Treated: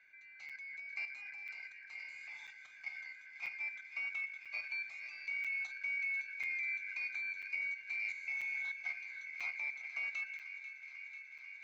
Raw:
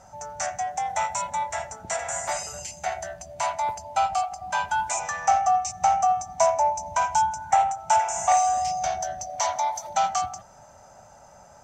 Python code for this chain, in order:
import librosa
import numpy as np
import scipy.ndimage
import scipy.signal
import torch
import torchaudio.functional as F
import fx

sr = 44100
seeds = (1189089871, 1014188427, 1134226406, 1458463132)

y = fx.band_shuffle(x, sr, order='3142')
y = scipy.signal.sosfilt(scipy.signal.ellip(3, 1.0, 40, [720.0, 7200.0], 'bandpass', fs=sr, output='sos'), y)
y = fx.peak_eq(y, sr, hz=3000.0, db=-9.0, octaves=0.33)
y = fx.transient(y, sr, attack_db=-1, sustain_db=6)
y = fx.level_steps(y, sr, step_db=9)
y = fx.quant_companded(y, sr, bits=6)
y = fx.air_absorb(y, sr, metres=390.0)
y = fx.echo_wet_highpass(y, sr, ms=492, feedback_pct=84, hz=1400.0, wet_db=-12.5)
y = fx.buffer_crackle(y, sr, first_s=0.49, period_s=0.99, block=256, kind='zero')
y = y * librosa.db_to_amplitude(-7.0)